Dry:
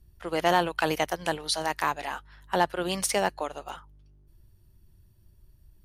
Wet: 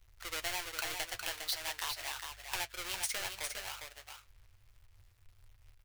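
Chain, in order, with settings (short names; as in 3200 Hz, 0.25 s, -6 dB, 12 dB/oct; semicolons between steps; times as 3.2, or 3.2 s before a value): half-waves squared off; EQ curve 110 Hz 0 dB, 160 Hz -24 dB, 2200 Hz +6 dB; compressor 3:1, threshold -26 dBFS, peak gain reduction 11 dB; flange 0.36 Hz, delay 8 ms, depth 1.6 ms, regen -51%; on a send: echo 0.406 s -6 dB; on the sum: gain -5 dB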